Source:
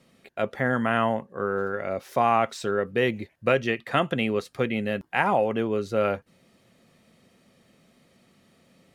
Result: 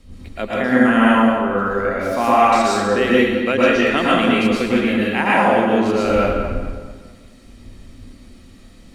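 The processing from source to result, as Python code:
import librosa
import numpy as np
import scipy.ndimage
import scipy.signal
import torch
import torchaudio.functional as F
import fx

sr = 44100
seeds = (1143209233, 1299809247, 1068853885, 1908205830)

y = fx.dmg_wind(x, sr, seeds[0], corner_hz=82.0, level_db=-41.0)
y = fx.graphic_eq_10(y, sr, hz=(125, 250, 500, 4000, 8000), db=(-11, 7, -3, 4, 4))
y = fx.echo_tape(y, sr, ms=215, feedback_pct=41, wet_db=-7.0, lp_hz=2700.0, drive_db=5.0, wow_cents=10)
y = fx.rev_plate(y, sr, seeds[1], rt60_s=0.91, hf_ratio=0.9, predelay_ms=100, drr_db=-6.0)
y = y * librosa.db_to_amplitude(1.5)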